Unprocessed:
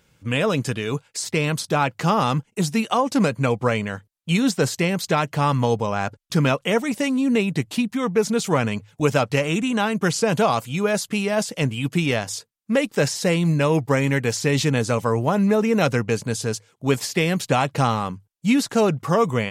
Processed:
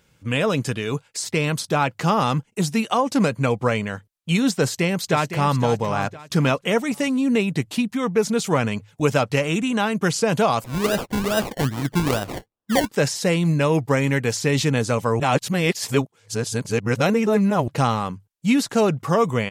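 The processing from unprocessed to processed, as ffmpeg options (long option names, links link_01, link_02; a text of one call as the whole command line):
ffmpeg -i in.wav -filter_complex "[0:a]asplit=2[link_01][link_02];[link_02]afade=type=in:start_time=4.61:duration=0.01,afade=type=out:start_time=5.55:duration=0.01,aecho=0:1:510|1020|1530:0.316228|0.0948683|0.0284605[link_03];[link_01][link_03]amix=inputs=2:normalize=0,asettb=1/sr,asplit=3[link_04][link_05][link_06];[link_04]atrim=end=10.644[link_07];[link_05]atrim=start=10.64:end=12.89,asetpts=PTS-STARTPTS,afade=type=in:duration=0.004:curve=qsin,afade=type=out:start_time=2.246:duration=0.004:curve=qsin,acrusher=samples=28:mix=1:aa=0.000001:lfo=1:lforange=16.8:lforate=2.4[link_08];[link_06]atrim=start=12.886[link_09];[link_07][link_08]acrossfade=duration=0.004:curve1=hsin:curve2=qsin[link_10];[link_10][link_09]acrossfade=duration=0.004:curve1=qsin:curve2=hsin,asplit=3[link_11][link_12][link_13];[link_11]atrim=end=15.202[link_14];[link_12]atrim=start=15.198:end=17.682,asetpts=PTS-STARTPTS,areverse[link_15];[link_13]atrim=start=17.678[link_16];[link_14][link_15]acrossfade=duration=0.004:curve1=hsin:curve2=hsin[link_17];[link_17][link_16]acrossfade=duration=0.004:curve1=hsin:curve2=hsin" out.wav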